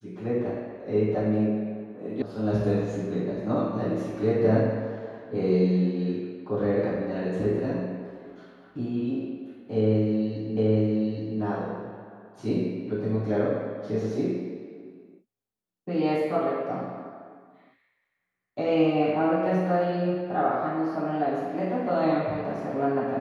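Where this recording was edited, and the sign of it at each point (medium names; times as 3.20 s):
2.22 s: sound stops dead
10.57 s: repeat of the last 0.82 s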